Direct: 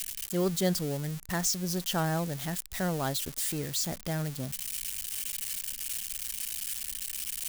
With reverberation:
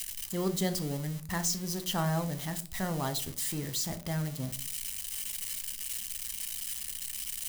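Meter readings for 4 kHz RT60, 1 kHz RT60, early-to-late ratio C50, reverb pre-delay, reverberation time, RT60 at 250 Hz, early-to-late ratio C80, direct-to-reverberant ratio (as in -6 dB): 0.30 s, 0.40 s, 16.0 dB, 8 ms, 0.45 s, 0.60 s, 20.5 dB, 8.0 dB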